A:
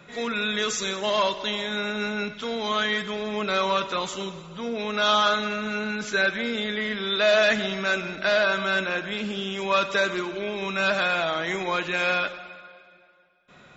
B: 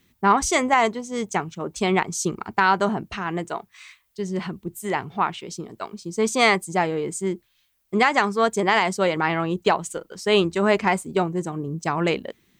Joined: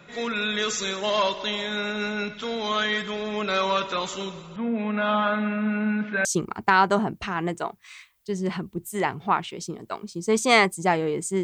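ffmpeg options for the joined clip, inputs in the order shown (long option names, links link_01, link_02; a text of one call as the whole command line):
ffmpeg -i cue0.wav -i cue1.wav -filter_complex "[0:a]asettb=1/sr,asplit=3[link_01][link_02][link_03];[link_01]atrim=end=4.564[link_04];[link_02]atrim=start=4.56:end=6.25,asetpts=PTS-STARTPTS,afade=type=in:duration=0.004:curve=qsin,afade=type=out:start_time=1.686:duration=0.004:curve=qsin,highpass=140,equalizer=frequency=220:width_type=q:width=4:gain=10,equalizer=frequency=380:width_type=q:width=4:gain=-7,equalizer=frequency=1300:width_type=q:width=4:gain=-4,lowpass=frequency=2400:width=0.5412,lowpass=frequency=2400:width=1.3066[link_05];[link_03]atrim=start=6.246[link_06];[link_04][link_05]acrossfade=duration=0.004:curve1=hsin:curve2=qsin[link_07];[link_07][link_06]acrossfade=duration=0.004:curve1=qsin:curve2=hsin,apad=whole_dur=11.43,atrim=end=11.43,atrim=end=6.252[link_08];[1:a]atrim=start=2.148:end=7.33[link_09];[link_08][link_09]acrossfade=duration=0.004:curve1=hsin:curve2=hsin" out.wav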